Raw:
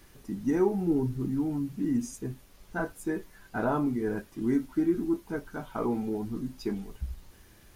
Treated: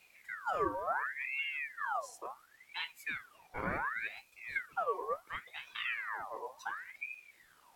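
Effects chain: 4.07–4.56 bell 360 Hz -13.5 dB 1.9 oct; ring modulator with a swept carrier 1600 Hz, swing 55%, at 0.7 Hz; gain -6 dB

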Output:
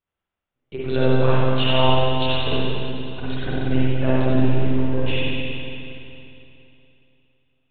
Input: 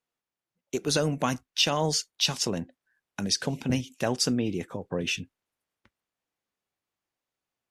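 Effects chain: monotone LPC vocoder at 8 kHz 130 Hz; spring tank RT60 2.9 s, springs 46/58 ms, chirp 50 ms, DRR -9 dB; 1.88–2.57 transient shaper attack +8 dB, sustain -2 dB; gain -2 dB

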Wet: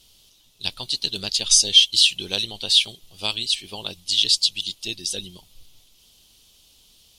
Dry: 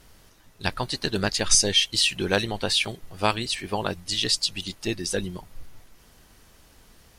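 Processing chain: resonant high shelf 2400 Hz +11 dB, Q 3; gain -9.5 dB

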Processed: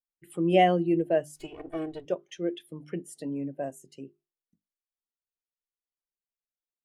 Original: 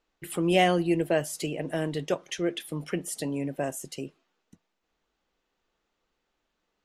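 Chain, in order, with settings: 1.36–2.05 minimum comb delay 2.7 ms; notches 50/100/150/200/250/300/350/400 Hz; spectral expander 1.5:1

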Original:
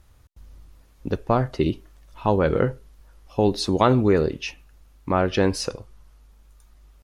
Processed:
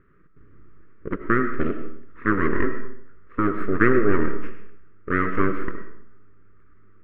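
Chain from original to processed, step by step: full-wave rectifier; EQ curve 110 Hz 0 dB, 410 Hz +15 dB, 810 Hz -20 dB, 1200 Hz +13 dB, 1900 Hz +9 dB, 4800 Hz -30 dB; reverb RT60 0.65 s, pre-delay 55 ms, DRR 8 dB; gain -5.5 dB

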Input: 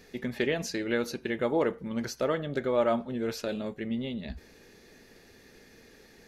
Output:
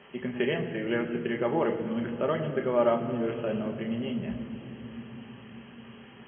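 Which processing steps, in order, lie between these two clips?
requantised 8-bit, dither triangular; brick-wall FIR low-pass 3300 Hz; reverb RT60 3.5 s, pre-delay 3 ms, DRR 4.5 dB; gain -7.5 dB

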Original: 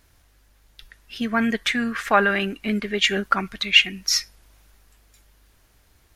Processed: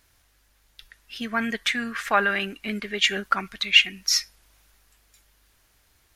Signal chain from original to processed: tilt shelf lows -3.5 dB, about 800 Hz; gain -4 dB

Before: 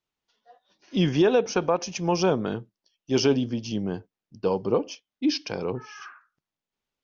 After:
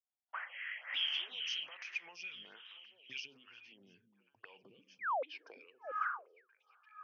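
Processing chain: gate -46 dBFS, range -20 dB; tilt shelf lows -8 dB, about 820 Hz, from 3.24 s lows +3.5 dB; limiter -19.5 dBFS, peak gain reduction 11.5 dB; compressor 4:1, threshold -38 dBFS, peak gain reduction 13 dB; 0.33–1.75 painted sound noise 490–3300 Hz -41 dBFS; auto-wah 740–3100 Hz, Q 8.9, up, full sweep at -34 dBFS; 4.99–5.23 painted sound fall 470–2500 Hz -46 dBFS; high-pass sweep 120 Hz -> 1100 Hz, 4.52–6.37; delay with a stepping band-pass 0.343 s, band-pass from 180 Hz, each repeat 1.4 oct, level -7 dB; photocell phaser 1.2 Hz; gain +12.5 dB

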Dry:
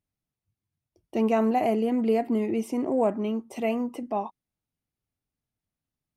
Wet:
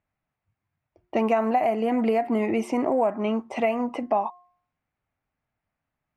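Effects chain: band shelf 1200 Hz +9 dB 2.4 oct; de-hum 356.8 Hz, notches 3; compressor 6:1, threshold -23 dBFS, peak gain reduction 11 dB; low-pass opened by the level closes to 2800 Hz, open at -22 dBFS; gain +3.5 dB

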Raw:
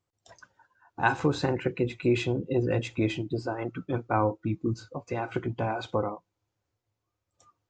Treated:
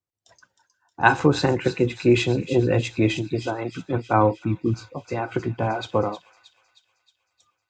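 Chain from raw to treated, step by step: thin delay 0.313 s, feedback 68%, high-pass 3400 Hz, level -6 dB; three-band expander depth 40%; gain +6 dB

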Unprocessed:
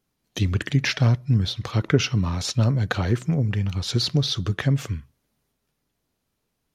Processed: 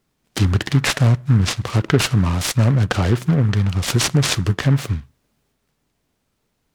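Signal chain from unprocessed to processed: in parallel at +0.5 dB: limiter -14.5 dBFS, peak gain reduction 9.5 dB; on the sum: noise-modulated delay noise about 1200 Hz, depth 0.065 ms

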